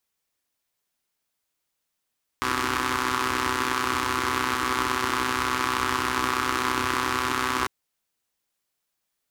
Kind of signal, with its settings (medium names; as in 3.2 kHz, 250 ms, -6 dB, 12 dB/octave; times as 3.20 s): four-cylinder engine model, steady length 5.25 s, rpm 3800, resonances 84/310/1100 Hz